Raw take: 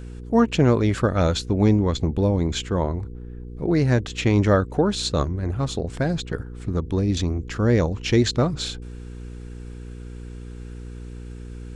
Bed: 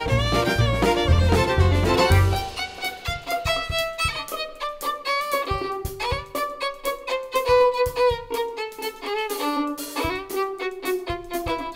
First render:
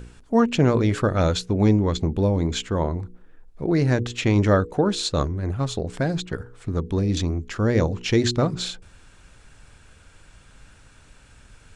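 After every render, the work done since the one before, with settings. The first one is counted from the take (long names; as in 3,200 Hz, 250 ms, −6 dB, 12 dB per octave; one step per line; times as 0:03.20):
hum removal 60 Hz, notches 8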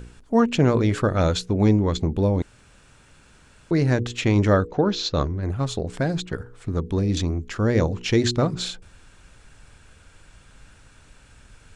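0:02.42–0:03.71: fill with room tone
0:04.68–0:05.43: Butterworth low-pass 6,300 Hz 48 dB per octave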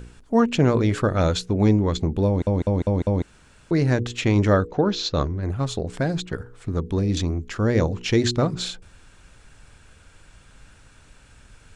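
0:02.27: stutter in place 0.20 s, 5 plays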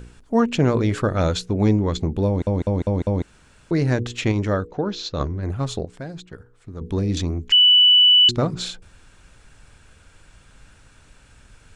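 0:04.32–0:05.20: clip gain −4 dB
0:05.85–0:06.81: clip gain −10 dB
0:07.52–0:08.29: beep over 2,970 Hz −9.5 dBFS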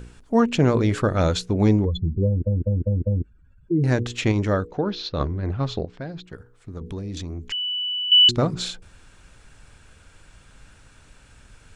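0:01.85–0:03.84: expanding power law on the bin magnitudes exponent 2.7
0:04.84–0:06.24: low-pass filter 5,000 Hz 24 dB per octave
0:06.78–0:08.12: downward compressor 3 to 1, threshold −31 dBFS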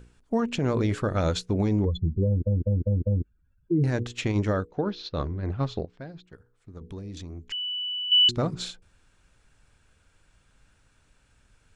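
brickwall limiter −14.5 dBFS, peak gain reduction 8 dB
expander for the loud parts 1.5 to 1, over −42 dBFS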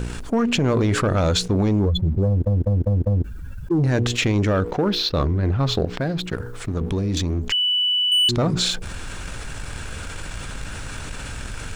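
leveller curve on the samples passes 1
envelope flattener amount 70%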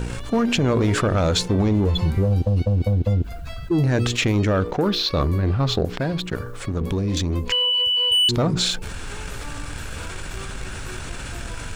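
mix in bed −17 dB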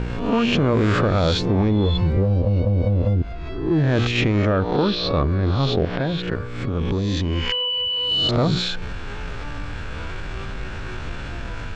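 peak hold with a rise ahead of every peak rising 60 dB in 0.71 s
high-frequency loss of the air 190 metres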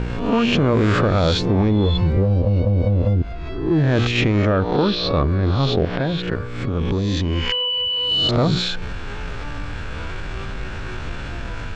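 level +1.5 dB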